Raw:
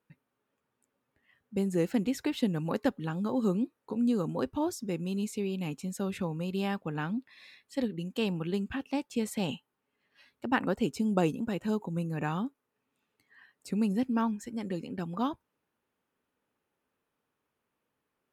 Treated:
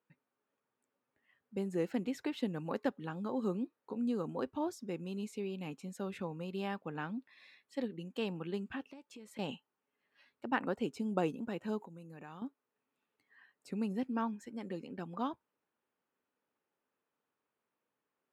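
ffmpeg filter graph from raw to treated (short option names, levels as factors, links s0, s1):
-filter_complex "[0:a]asettb=1/sr,asplit=3[s0][s1][s2];[s0]atrim=end=8.894[s3];[s1]atrim=start=8.89:end=9.39,asetpts=PTS-STARTPTS,afade=t=in:d=0.004:c=qsin,afade=t=out:st=0.496:d=0.004:c=qsin,acompressor=threshold=0.00891:ratio=10:attack=3.2:release=140:knee=1:detection=peak,asuperstop=centerf=760:order=4:qfactor=5.4[s4];[s2]atrim=start=9.386[s5];[s3][s4]acrossfade=d=0.004:c1=hsin:c2=qsin[s6];[s6][s5]acrossfade=d=0.004:c1=qsin:c2=hsin,asettb=1/sr,asplit=3[s7][s8][s9];[s7]atrim=end=11.784[s10];[s8]atrim=start=11.78:end=12.42,asetpts=PTS-STARTPTS,afade=t=in:d=0.004:c=qsin,afade=t=out:st=0.636:d=0.004:c=qsin,acompressor=threshold=0.00794:ratio=4:attack=3.2:release=140:knee=1:detection=peak,highshelf=f=4300:g=6.5[s11];[s9]atrim=start=12.416[s12];[s10][s11]acrossfade=d=0.004:c1=hsin:c2=qsin[s13];[s13][s12]acrossfade=d=0.004:c1=qsin:c2=hsin,highpass=f=280:p=1,highshelf=f=4300:g=-10,volume=0.668"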